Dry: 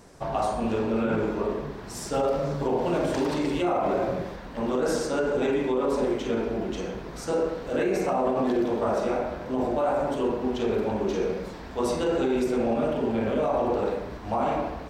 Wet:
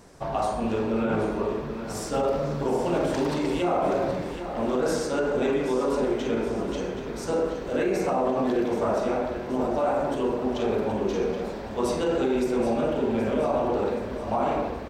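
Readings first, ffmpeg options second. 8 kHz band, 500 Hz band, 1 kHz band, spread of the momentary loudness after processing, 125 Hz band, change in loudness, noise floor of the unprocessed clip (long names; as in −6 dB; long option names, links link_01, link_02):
+0.5 dB, +0.5 dB, +0.5 dB, 5 LU, +0.5 dB, +0.5 dB, −39 dBFS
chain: -af "aecho=1:1:775|1550|2325|3100|3875|4650:0.299|0.155|0.0807|0.042|0.0218|0.0114"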